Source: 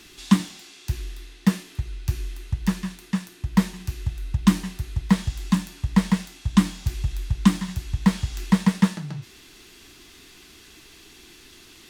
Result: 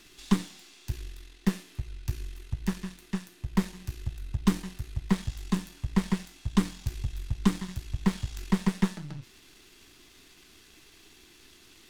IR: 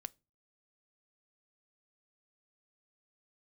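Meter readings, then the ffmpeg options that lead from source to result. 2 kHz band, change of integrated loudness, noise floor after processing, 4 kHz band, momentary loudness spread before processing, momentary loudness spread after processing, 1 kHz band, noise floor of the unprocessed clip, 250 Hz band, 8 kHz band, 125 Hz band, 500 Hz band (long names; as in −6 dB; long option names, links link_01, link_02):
−7.0 dB, −7.0 dB, −56 dBFS, −7.0 dB, 11 LU, 11 LU, −7.0 dB, −49 dBFS, −7.0 dB, −7.0 dB, −7.0 dB, −0.5 dB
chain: -af "aeval=exprs='if(lt(val(0),0),0.447*val(0),val(0))':channel_layout=same,volume=-4.5dB"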